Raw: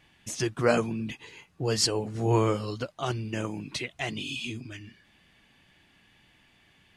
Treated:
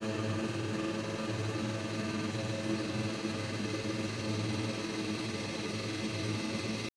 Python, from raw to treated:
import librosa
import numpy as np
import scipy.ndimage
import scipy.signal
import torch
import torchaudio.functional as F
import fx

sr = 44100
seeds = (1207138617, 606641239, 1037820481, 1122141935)

y = fx.paulstretch(x, sr, seeds[0], factor=42.0, window_s=1.0, from_s=3.47)
y = fx.granulator(y, sr, seeds[1], grain_ms=100.0, per_s=20.0, spray_ms=100.0, spread_st=0)